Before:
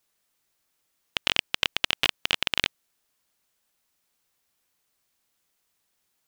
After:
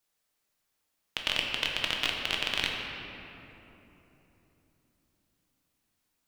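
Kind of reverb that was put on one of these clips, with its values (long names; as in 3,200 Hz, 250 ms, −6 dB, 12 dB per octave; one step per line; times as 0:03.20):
rectangular room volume 190 cubic metres, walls hard, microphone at 0.5 metres
level −6 dB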